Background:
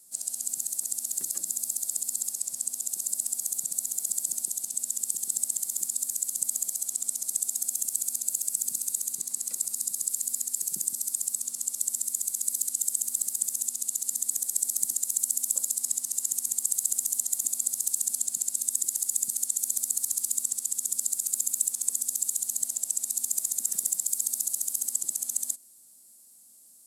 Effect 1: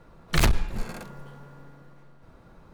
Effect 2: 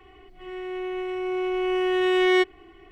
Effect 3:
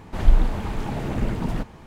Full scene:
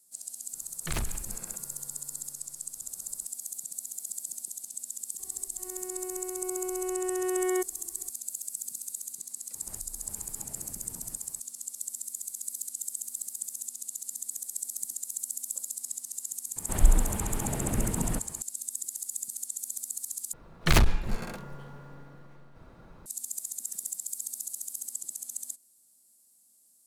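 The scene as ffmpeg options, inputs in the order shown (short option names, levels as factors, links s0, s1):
-filter_complex "[1:a]asplit=2[s0][s1];[3:a]asplit=2[s2][s3];[0:a]volume=0.398[s4];[s0]aecho=1:1:183:0.158[s5];[2:a]lowpass=1300[s6];[s2]acompressor=threshold=0.0316:ratio=6:attack=3.2:release=140:knee=1:detection=peak[s7];[s4]asplit=2[s8][s9];[s8]atrim=end=20.334[s10];[s1]atrim=end=2.73[s11];[s9]atrim=start=23.056[s12];[s5]atrim=end=2.73,asetpts=PTS-STARTPTS,volume=0.251,afade=t=in:d=0.004:c=hsin,afade=t=out:st=2.726:d=0.004:c=hsin,adelay=530[s13];[s6]atrim=end=2.91,asetpts=PTS-STARTPTS,volume=0.398,afade=t=in:d=0.004:c=hsin,afade=t=out:st=2.906:d=0.004:c=hsin,adelay=5190[s14];[s7]atrim=end=1.86,asetpts=PTS-STARTPTS,volume=0.168,afade=t=in:d=0.004:c=hsin,afade=t=out:st=1.856:d=0.004:c=hsin,adelay=420714S[s15];[s3]atrim=end=1.86,asetpts=PTS-STARTPTS,volume=0.596,afade=t=in:d=0.004:c=hsin,afade=t=out:st=1.856:d=0.004:c=hsin,adelay=16560[s16];[s10][s11]acrossfade=d=0.004:c1=hsin:c2=hsin[s17];[s17][s12]acrossfade=d=0.004:c1=hsin:c2=hsin[s18];[s18][s13][s14][s15][s16]amix=inputs=5:normalize=0"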